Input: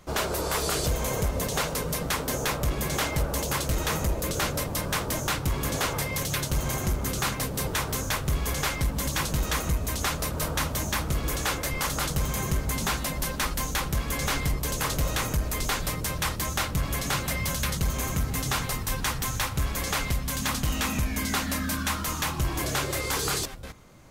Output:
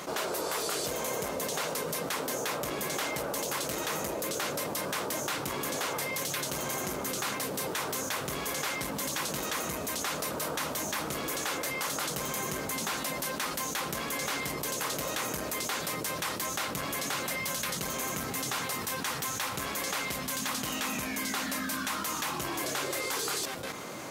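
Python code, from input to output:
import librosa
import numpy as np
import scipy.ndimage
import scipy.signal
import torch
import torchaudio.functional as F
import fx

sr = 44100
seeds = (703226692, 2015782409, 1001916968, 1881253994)

y = scipy.signal.sosfilt(scipy.signal.butter(2, 270.0, 'highpass', fs=sr, output='sos'), x)
y = fx.env_flatten(y, sr, amount_pct=70)
y = y * 10.0 ** (-6.5 / 20.0)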